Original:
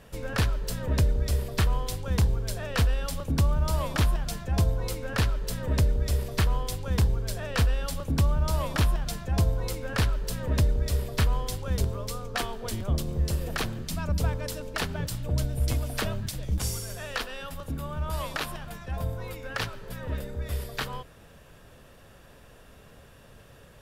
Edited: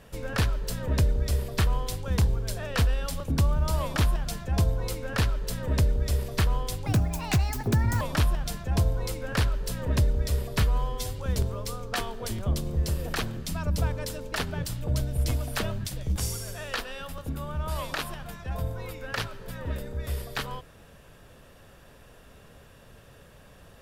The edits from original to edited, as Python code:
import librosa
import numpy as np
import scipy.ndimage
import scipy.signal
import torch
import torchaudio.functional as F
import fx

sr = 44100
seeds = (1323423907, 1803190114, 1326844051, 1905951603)

y = fx.edit(x, sr, fx.speed_span(start_s=6.86, length_s=1.76, speed=1.53),
    fx.stretch_span(start_s=11.23, length_s=0.38, factor=1.5), tone=tone)